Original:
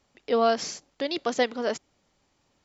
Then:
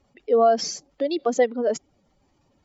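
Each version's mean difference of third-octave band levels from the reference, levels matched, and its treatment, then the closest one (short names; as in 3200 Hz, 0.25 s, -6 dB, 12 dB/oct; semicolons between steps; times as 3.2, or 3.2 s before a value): 6.5 dB: spectral contrast raised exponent 1.8; gain +5 dB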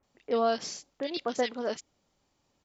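2.0 dB: bands offset in time lows, highs 30 ms, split 1900 Hz; gain -4 dB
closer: second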